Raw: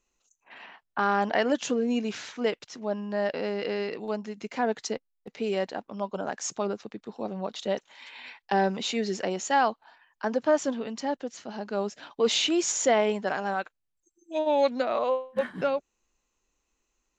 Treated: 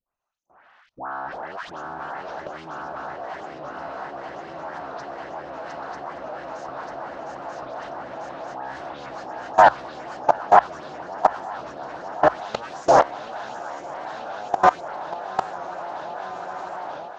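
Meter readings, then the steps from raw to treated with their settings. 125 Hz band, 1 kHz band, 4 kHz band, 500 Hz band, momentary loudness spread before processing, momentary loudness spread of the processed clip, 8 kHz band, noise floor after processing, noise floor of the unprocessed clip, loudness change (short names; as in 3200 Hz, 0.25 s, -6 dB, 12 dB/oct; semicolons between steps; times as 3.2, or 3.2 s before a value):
-1.5 dB, +9.0 dB, -8.5 dB, +0.5 dB, 12 LU, 18 LU, under -10 dB, -54 dBFS, -79 dBFS, +3.0 dB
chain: cycle switcher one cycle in 3, inverted; dispersion highs, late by 0.149 s, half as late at 1400 Hz; on a send: swung echo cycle 0.943 s, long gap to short 3:1, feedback 75%, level -4 dB; on the sum: hard clip -14.5 dBFS, distortion -24 dB; level quantiser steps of 21 dB; notches 60/120 Hz; AGC gain up to 9 dB; LPF 5900 Hz 24 dB/oct; band shelf 1000 Hz +12 dB; record warp 45 rpm, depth 100 cents; gain -8.5 dB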